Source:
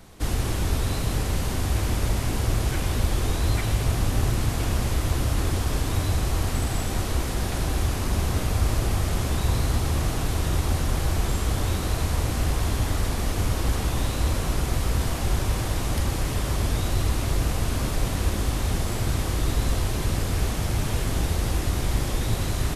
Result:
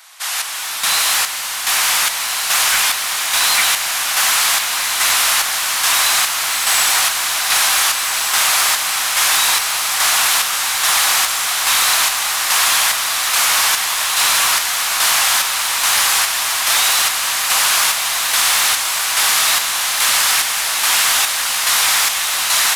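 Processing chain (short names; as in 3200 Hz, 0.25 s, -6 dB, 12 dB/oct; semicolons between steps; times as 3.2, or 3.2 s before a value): Bessel high-pass 1400 Hz, order 6; AGC gain up to 13 dB; in parallel at -1 dB: limiter -21 dBFS, peak gain reduction 13.5 dB; on the sum: soft clip -17 dBFS, distortion -15 dB; chopper 1.2 Hz, depth 60%, duty 50%; on a send: diffused feedback echo 1.497 s, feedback 66%, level -5 dB; on the sum: gain +7.5 dB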